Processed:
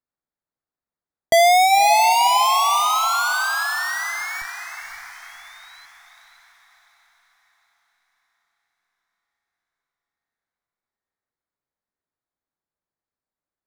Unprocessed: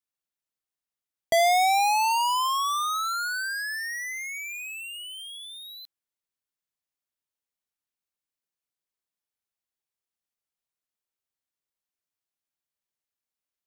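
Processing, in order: Wiener smoothing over 15 samples; 1.52–2.16 de-hum 152.6 Hz, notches 26; in parallel at -10.5 dB: Schmitt trigger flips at -46 dBFS; on the sum: diffused feedback echo 0.54 s, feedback 47%, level -8.5 dB; gain +6.5 dB

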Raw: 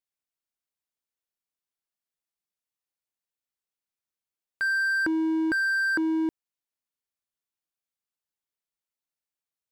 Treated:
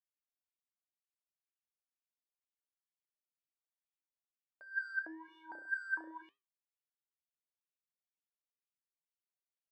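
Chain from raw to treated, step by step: 5.25–6.22 flutter echo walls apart 5.7 m, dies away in 0.54 s; wah 2.1 Hz 550–3000 Hz, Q 8; flange 1.1 Hz, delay 8.4 ms, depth 6.2 ms, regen -79%; gain +1 dB

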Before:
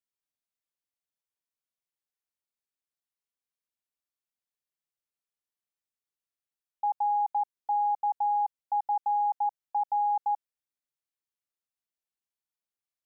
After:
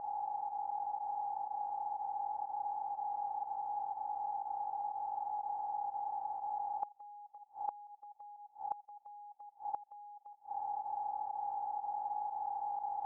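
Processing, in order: per-bin compression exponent 0.2; LPF 1000 Hz 12 dB/oct; in parallel at +3 dB: compressor, threshold -39 dBFS, peak gain reduction 12.5 dB; on the sum: flipped gate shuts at -25 dBFS, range -27 dB; pump 122 bpm, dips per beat 1, -13 dB, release 65 ms

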